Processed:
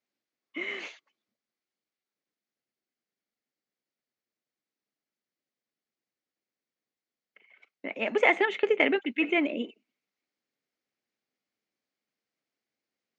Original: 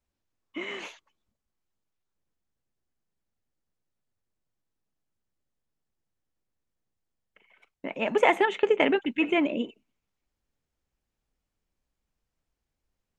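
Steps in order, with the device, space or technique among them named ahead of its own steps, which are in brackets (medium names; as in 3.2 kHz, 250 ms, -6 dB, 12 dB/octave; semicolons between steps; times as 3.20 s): television speaker (cabinet simulation 170–6600 Hz, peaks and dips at 170 Hz -8 dB, 950 Hz -6 dB, 2.1 kHz +6 dB, 4.5 kHz +4 dB); trim -2 dB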